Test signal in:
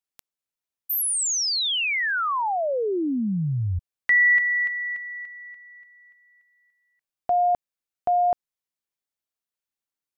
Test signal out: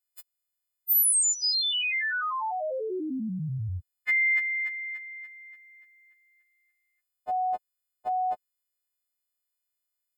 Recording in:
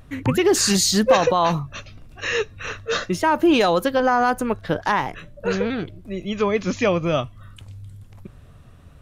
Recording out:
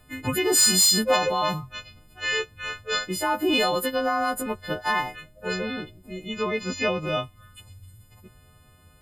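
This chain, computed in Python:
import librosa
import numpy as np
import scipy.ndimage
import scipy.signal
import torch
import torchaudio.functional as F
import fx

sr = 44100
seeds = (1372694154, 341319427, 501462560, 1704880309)

y = fx.freq_snap(x, sr, grid_st=3)
y = np.clip(y, -10.0 ** (-4.0 / 20.0), 10.0 ** (-4.0 / 20.0))
y = fx.notch(y, sr, hz=6000.0, q=6.1)
y = F.gain(torch.from_numpy(y), -6.5).numpy()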